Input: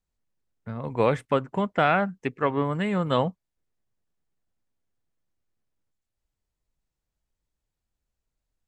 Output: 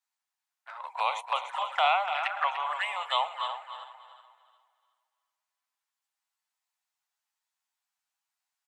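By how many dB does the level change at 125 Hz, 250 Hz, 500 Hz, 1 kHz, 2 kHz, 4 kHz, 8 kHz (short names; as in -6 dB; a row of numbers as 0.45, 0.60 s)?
under -40 dB, under -40 dB, -12.5 dB, +0.5 dB, -1.0 dB, +6.0 dB, n/a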